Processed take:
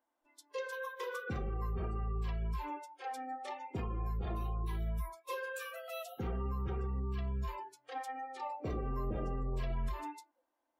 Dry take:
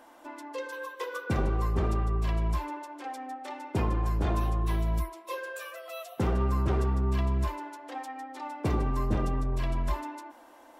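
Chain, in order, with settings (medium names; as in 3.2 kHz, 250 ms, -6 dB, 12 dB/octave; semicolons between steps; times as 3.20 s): 8.05–9.72 s: dynamic bell 500 Hz, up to +7 dB, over -47 dBFS, Q 1.8; peak limiter -27 dBFS, peak gain reduction 12 dB; spectral noise reduction 28 dB; trim -2.5 dB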